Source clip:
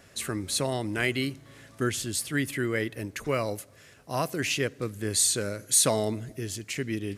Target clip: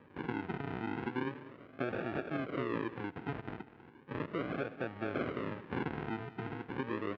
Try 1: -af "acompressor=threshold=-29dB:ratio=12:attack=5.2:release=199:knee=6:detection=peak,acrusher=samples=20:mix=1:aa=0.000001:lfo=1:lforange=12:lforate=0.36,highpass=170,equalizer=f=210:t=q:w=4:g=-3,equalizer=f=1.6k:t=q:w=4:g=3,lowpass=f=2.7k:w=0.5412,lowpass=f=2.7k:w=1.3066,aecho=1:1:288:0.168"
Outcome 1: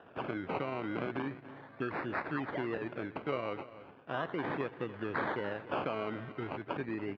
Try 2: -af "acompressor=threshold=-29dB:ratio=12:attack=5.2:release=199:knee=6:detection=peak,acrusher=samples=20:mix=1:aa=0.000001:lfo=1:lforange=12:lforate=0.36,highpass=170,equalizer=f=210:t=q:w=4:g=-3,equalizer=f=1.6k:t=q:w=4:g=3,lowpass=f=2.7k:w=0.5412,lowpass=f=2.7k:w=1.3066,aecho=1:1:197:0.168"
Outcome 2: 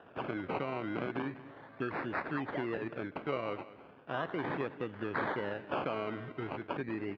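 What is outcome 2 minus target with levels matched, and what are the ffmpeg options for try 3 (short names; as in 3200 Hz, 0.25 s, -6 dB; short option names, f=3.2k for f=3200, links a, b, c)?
decimation with a swept rate: distortion -10 dB
-af "acompressor=threshold=-29dB:ratio=12:attack=5.2:release=199:knee=6:detection=peak,acrusher=samples=61:mix=1:aa=0.000001:lfo=1:lforange=36.6:lforate=0.36,highpass=170,equalizer=f=210:t=q:w=4:g=-3,equalizer=f=1.6k:t=q:w=4:g=3,lowpass=f=2.7k:w=0.5412,lowpass=f=2.7k:w=1.3066,aecho=1:1:197:0.168"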